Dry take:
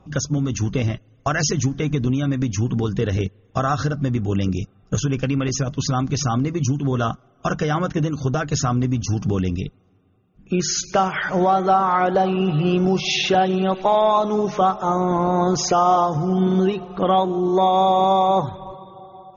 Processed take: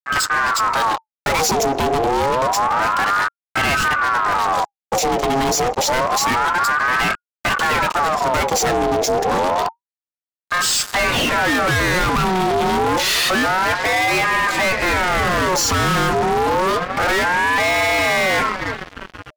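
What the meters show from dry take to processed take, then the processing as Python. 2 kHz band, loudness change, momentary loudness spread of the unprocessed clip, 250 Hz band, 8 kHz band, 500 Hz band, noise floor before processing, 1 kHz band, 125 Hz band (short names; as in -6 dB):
+14.0 dB, +3.0 dB, 8 LU, -4.0 dB, n/a, +1.0 dB, -56 dBFS, +3.0 dB, -7.0 dB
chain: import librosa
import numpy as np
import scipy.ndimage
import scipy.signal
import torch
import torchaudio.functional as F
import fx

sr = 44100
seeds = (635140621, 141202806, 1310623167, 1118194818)

y = fx.fuzz(x, sr, gain_db=33.0, gate_db=-38.0)
y = fx.ring_lfo(y, sr, carrier_hz=990.0, swing_pct=45, hz=0.28)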